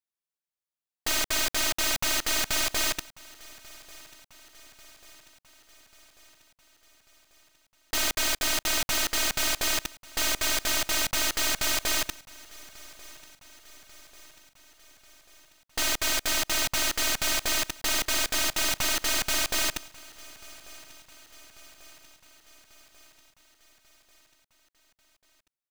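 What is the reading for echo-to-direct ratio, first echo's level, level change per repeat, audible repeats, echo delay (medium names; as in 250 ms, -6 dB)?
-20.0 dB, -22.0 dB, -4.5 dB, 3, 1141 ms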